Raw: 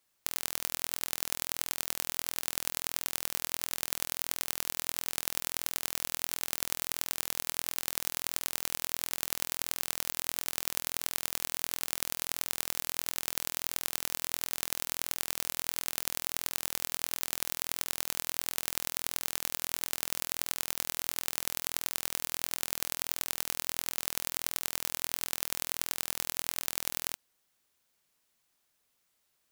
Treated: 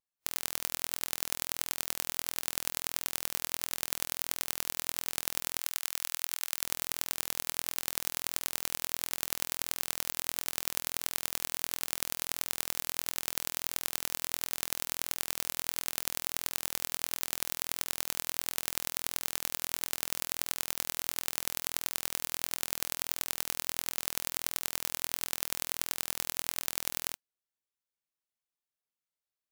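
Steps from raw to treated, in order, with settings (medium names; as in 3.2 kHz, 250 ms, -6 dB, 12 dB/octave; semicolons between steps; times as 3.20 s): 5.60–6.63 s: high-pass 850 Hz 12 dB/octave; spectral contrast expander 1.5:1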